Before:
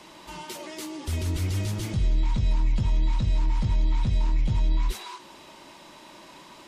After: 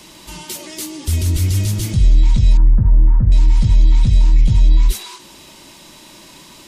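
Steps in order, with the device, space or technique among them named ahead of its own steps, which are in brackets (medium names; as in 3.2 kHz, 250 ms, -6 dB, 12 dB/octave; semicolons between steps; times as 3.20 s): smiley-face EQ (bass shelf 120 Hz +4 dB; peaking EQ 880 Hz -8.5 dB 2.7 oct; treble shelf 6.6 kHz +8 dB); 2.57–3.32 s: steep low-pass 1.7 kHz 48 dB/octave; trim +9 dB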